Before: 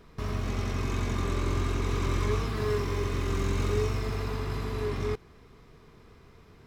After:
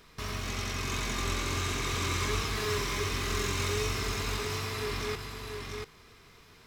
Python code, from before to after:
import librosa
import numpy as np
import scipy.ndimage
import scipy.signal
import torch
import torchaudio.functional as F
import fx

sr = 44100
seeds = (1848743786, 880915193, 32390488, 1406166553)

p1 = fx.tilt_shelf(x, sr, db=-7.5, hz=1300.0)
p2 = p1 + fx.echo_single(p1, sr, ms=689, db=-4.5, dry=0)
y = F.gain(torch.from_numpy(p2), 1.0).numpy()